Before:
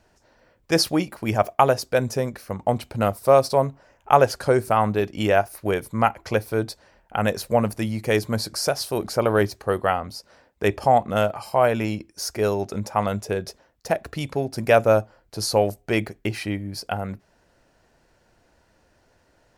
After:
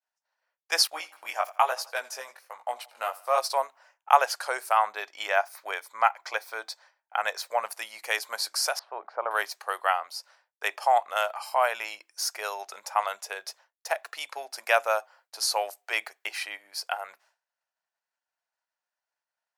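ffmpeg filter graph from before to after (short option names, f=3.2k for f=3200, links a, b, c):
-filter_complex "[0:a]asettb=1/sr,asplit=3[a][b][c];[a]atrim=end=0.874[d];[b]atrim=start=0.87:end=3.38,asetpts=PTS-STARTPTS,afade=t=in:d=0.004:c=qsin,afade=t=out:st=2.506:d=0.004:c=qsin,agate=range=-11dB:threshold=-38dB:ratio=16:release=100:detection=peak,flanger=delay=16:depth=6.6:speed=1.1,aecho=1:1:84|168|252:0.0891|0.0419|0.0197,atrim=end_sample=110691[e];[c]atrim=start=3.376[f];[d][e]acrossfade=d=0.004:c1=hsin:c2=qsin[g];[g][f]acrossfade=d=0.004:c1=qsin:c2=hsin,asettb=1/sr,asplit=3[h][i][j];[h]atrim=end=4.794[k];[i]atrim=start=4.79:end=7.66,asetpts=PTS-STARTPTS,afade=t=in:d=0.004:c=qsin,afade=t=out:st=2.866:d=0.004:c=qsin,equalizer=f=11k:w=1.5:g=-9.5,bandreject=f=2.8k:w=10[l];[j]atrim=start=7.656[m];[k][l]acrossfade=d=0.004:c1=hsin:c2=qsin[n];[n][m]acrossfade=d=0.004:c1=qsin:c2=hsin,asettb=1/sr,asplit=3[o][p][q];[o]atrim=end=8.794[r];[p]atrim=start=8.79:end=9.31,asetpts=PTS-STARTPTS,afade=t=in:d=0.004:c=qsin,afade=t=out:st=0.516:d=0.004:c=qsin,lowpass=1.3k,aemphasis=mode=reproduction:type=75fm[s];[q]atrim=start=9.306[t];[r][s]acrossfade=d=0.004:c1=hsin:c2=qsin[u];[u][t]acrossfade=d=0.004:c1=qsin:c2=hsin,agate=range=-33dB:threshold=-46dB:ratio=3:detection=peak,highpass=f=780:w=0.5412,highpass=f=780:w=1.3066"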